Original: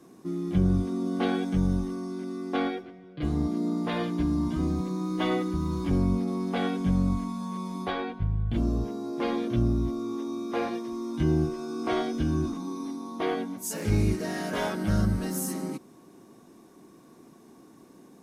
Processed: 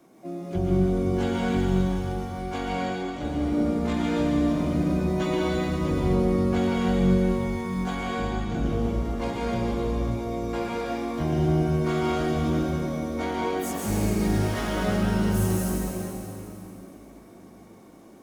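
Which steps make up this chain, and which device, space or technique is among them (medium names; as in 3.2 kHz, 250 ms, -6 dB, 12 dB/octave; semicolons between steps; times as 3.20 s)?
shimmer-style reverb (harmony voices +12 st -6 dB; reverberation RT60 3.3 s, pre-delay 115 ms, DRR -4.5 dB); trim -4.5 dB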